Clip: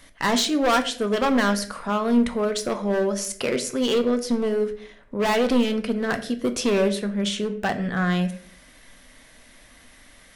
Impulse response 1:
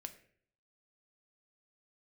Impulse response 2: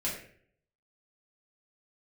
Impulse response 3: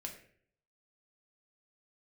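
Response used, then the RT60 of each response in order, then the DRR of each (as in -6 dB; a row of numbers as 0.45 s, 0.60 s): 1; 0.55 s, 0.55 s, 0.55 s; 7.5 dB, -7.0 dB, 1.0 dB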